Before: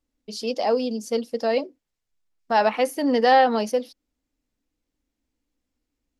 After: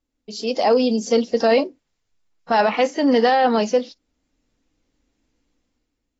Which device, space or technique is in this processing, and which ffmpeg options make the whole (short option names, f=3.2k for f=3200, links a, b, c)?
low-bitrate web radio: -af "dynaudnorm=f=110:g=11:m=9.5dB,alimiter=limit=-8.5dB:level=0:latency=1:release=15" -ar 24000 -c:a aac -b:a 24k